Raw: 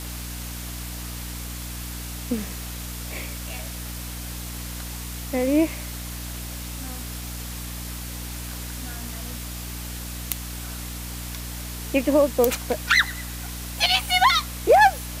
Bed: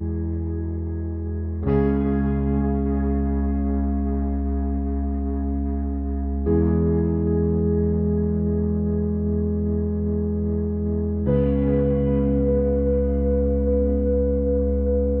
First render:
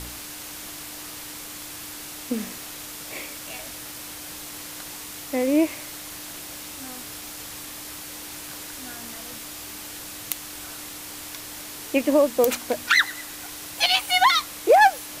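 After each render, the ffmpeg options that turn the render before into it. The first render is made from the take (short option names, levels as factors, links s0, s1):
-af "bandreject=f=60:t=h:w=4,bandreject=f=120:t=h:w=4,bandreject=f=180:t=h:w=4,bandreject=f=240:t=h:w=4"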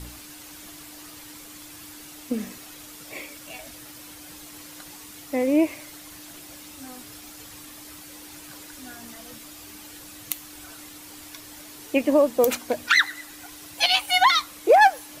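-af "afftdn=nr=8:nf=-38"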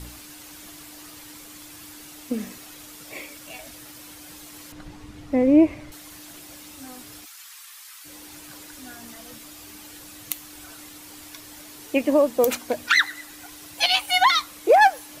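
-filter_complex "[0:a]asettb=1/sr,asplit=3[s0][s1][s2];[s0]atrim=end=4.724[s3];[s1]atrim=start=4.72:end=5.92,asetpts=PTS-STARTPTS,afade=t=in:d=0.004:c=qsin,afade=t=out:st=1.196:d=0.004:c=qsin,aemphasis=mode=reproduction:type=riaa[s4];[s2]atrim=start=5.916[s5];[s3][s4]acrossfade=d=0.004:c1=hsin:c2=qsin[s6];[s6][s5]acrossfade=d=0.004:c1=qsin:c2=hsin,asplit=3[s7][s8][s9];[s7]afade=t=out:st=7.24:d=0.02[s10];[s8]highpass=f=1100:w=0.5412,highpass=f=1100:w=1.3066,afade=t=in:st=7.24:d=0.02,afade=t=out:st=8.04:d=0.02[s11];[s9]afade=t=in:st=8.04:d=0.02[s12];[s10][s11][s12]amix=inputs=3:normalize=0"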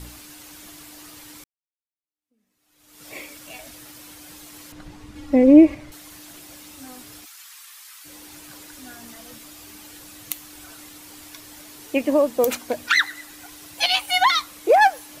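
-filter_complex "[0:a]asettb=1/sr,asplit=3[s0][s1][s2];[s0]atrim=end=5.154[s3];[s1]atrim=start=5.15:end=5.75,asetpts=PTS-STARTPTS,afade=t=in:d=0.004:c=qsin,afade=t=out:st=0.596:d=0.004:c=qsin,aecho=1:1:3.6:0.92,atrim=end_sample=26460[s4];[s2]atrim=start=5.746[s5];[s3][s4]acrossfade=d=0.004:c1=hsin:c2=qsin[s6];[s6][s5]acrossfade=d=0.004:c1=qsin:c2=hsin,asplit=2[s7][s8];[s7]atrim=end=1.44,asetpts=PTS-STARTPTS,afade=t=out:st=1.436:d=0.004:c=hsin[s9];[s8]atrim=start=1.44,asetpts=PTS-STARTPTS,afade=t=in:d=1.62:c=exp[s10];[s9][s10]concat=n=2:v=0:a=1"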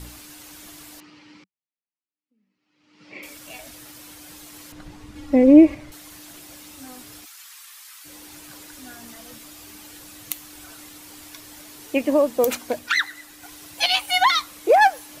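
-filter_complex "[0:a]asettb=1/sr,asplit=3[s0][s1][s2];[s0]atrim=end=1.004[s3];[s1]atrim=start=1:end=3.23,asetpts=PTS-STARTPTS,afade=t=in:d=0.004:c=qsin,afade=t=out:st=2.226:d=0.004:c=qsin,highpass=160,equalizer=f=190:t=q:w=4:g=7,equalizer=f=470:t=q:w=4:g=-4,equalizer=f=690:t=q:w=4:g=-10,equalizer=f=1100:t=q:w=4:g=-4,equalizer=f=1600:t=q:w=4:g=-6,equalizer=f=3600:t=q:w=4:g=-9,lowpass=f=4200:w=0.5412,lowpass=f=4200:w=1.3066[s4];[s2]atrim=start=3.226[s5];[s3][s4]acrossfade=d=0.004:c1=hsin:c2=qsin[s6];[s6][s5]acrossfade=d=0.004:c1=qsin:c2=hsin,asplit=3[s7][s8][s9];[s7]atrim=end=12.792[s10];[s8]atrim=start=12.788:end=13.432,asetpts=PTS-STARTPTS,volume=0.708[s11];[s9]atrim=start=13.428[s12];[s10][s11]acrossfade=d=0.004:c1=hsin:c2=hsin[s13];[s13][s12]acrossfade=d=0.004:c1=hsin:c2=hsin"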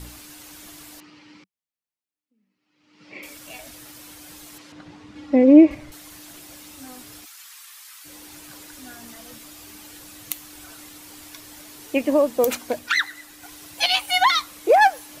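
-filter_complex "[0:a]asettb=1/sr,asplit=3[s0][s1][s2];[s0]atrim=end=4.584[s3];[s1]atrim=start=4.58:end=5.71,asetpts=PTS-STARTPTS,afade=t=in:d=0.004:c=qsin,afade=t=out:st=1.126:d=0.004:c=qsin,highpass=130,lowpass=5300[s4];[s2]atrim=start=5.706[s5];[s3][s4]acrossfade=d=0.004:c1=hsin:c2=qsin[s6];[s6][s5]acrossfade=d=0.004:c1=qsin:c2=hsin"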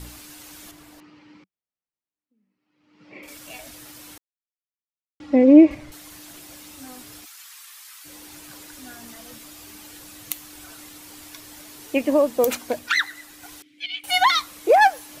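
-filter_complex "[0:a]asettb=1/sr,asplit=3[s0][s1][s2];[s0]atrim=end=0.714[s3];[s1]atrim=start=0.71:end=3.28,asetpts=PTS-STARTPTS,afade=t=in:d=0.004:c=qsin,afade=t=out:st=2.566:d=0.004:c=qsin,highshelf=f=2500:g=-10.5[s4];[s2]atrim=start=3.276[s5];[s3][s4]acrossfade=d=0.004:c1=hsin:c2=qsin[s6];[s6][s5]acrossfade=d=0.004:c1=qsin:c2=hsin,asettb=1/sr,asplit=3[s7][s8][s9];[s7]atrim=end=13.624[s10];[s8]atrim=start=13.62:end=14.04,asetpts=PTS-STARTPTS,afade=t=in:d=0.004:c=qsin,afade=t=out:st=0.416:d=0.004:c=qsin,asplit=3[s11][s12][s13];[s11]bandpass=f=270:t=q:w=8,volume=1[s14];[s12]bandpass=f=2290:t=q:w=8,volume=0.501[s15];[s13]bandpass=f=3010:t=q:w=8,volume=0.355[s16];[s14][s15][s16]amix=inputs=3:normalize=0[s17];[s9]atrim=start=14.036[s18];[s10][s17]acrossfade=d=0.004:c1=hsin:c2=qsin[s19];[s19][s18]acrossfade=d=0.004:c1=qsin:c2=hsin,asplit=3[s20][s21][s22];[s20]atrim=end=4.18,asetpts=PTS-STARTPTS,afade=t=out:st=4.176:d=0.004:c=hsin[s23];[s21]atrim=start=4.18:end=5.2,asetpts=PTS-STARTPTS,volume=0[s24];[s22]atrim=start=5.2,asetpts=PTS-STARTPTS,afade=t=in:d=0.004:c=hsin[s25];[s23][s24][s25]concat=n=3:v=0:a=1"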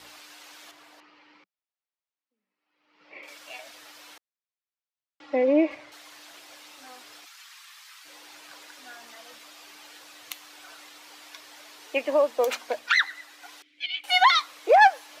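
-filter_complex "[0:a]highpass=100,acrossover=split=460 5700:gain=0.0794 1 0.2[s0][s1][s2];[s0][s1][s2]amix=inputs=3:normalize=0"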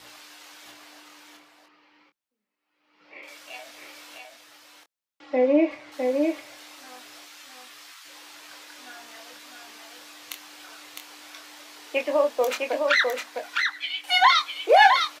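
-filter_complex "[0:a]asplit=2[s0][s1];[s1]adelay=24,volume=0.473[s2];[s0][s2]amix=inputs=2:normalize=0,aecho=1:1:657:0.631"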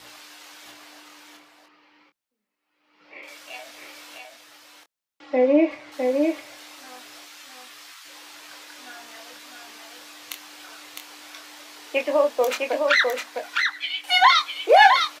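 -af "volume=1.26"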